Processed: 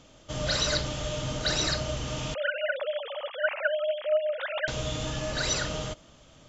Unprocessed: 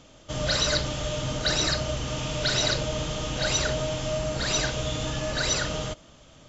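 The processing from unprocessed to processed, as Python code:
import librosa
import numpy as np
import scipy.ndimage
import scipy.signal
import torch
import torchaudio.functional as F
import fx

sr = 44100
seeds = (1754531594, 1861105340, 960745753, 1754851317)

y = fx.sine_speech(x, sr, at=(2.34, 4.68))
y = y * librosa.db_to_amplitude(-2.5)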